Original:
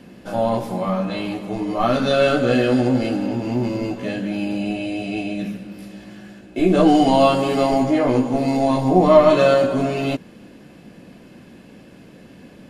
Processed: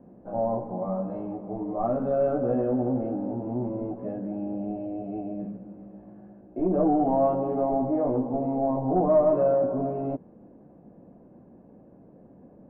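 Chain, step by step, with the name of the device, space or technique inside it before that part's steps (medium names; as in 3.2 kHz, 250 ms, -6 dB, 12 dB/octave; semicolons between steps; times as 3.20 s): overdriven synthesiser ladder filter (saturation -8 dBFS, distortion -18 dB; four-pole ladder low-pass 980 Hz, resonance 30%); trim -1.5 dB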